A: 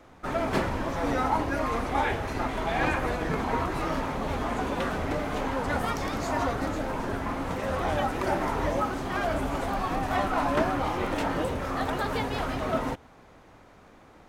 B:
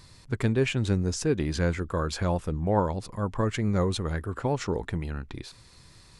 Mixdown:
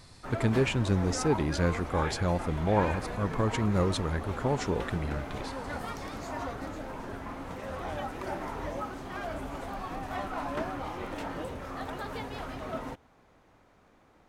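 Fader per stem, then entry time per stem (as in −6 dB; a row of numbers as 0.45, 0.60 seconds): −8.5, −1.5 decibels; 0.00, 0.00 seconds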